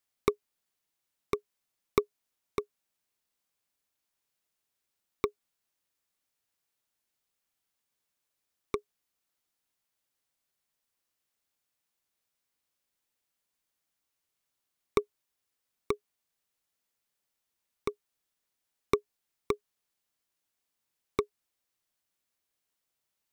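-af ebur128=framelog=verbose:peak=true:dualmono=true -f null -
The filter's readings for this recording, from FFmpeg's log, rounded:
Integrated loudness:
  I:         -33.1 LUFS
  Threshold: -43.5 LUFS
Loudness range:
  LRA:         9.1 LU
  Threshold: -59.5 LUFS
  LRA low:   -45.3 LUFS
  LRA high:  -36.2 LUFS
True peak:
  Peak:      -10.2 dBFS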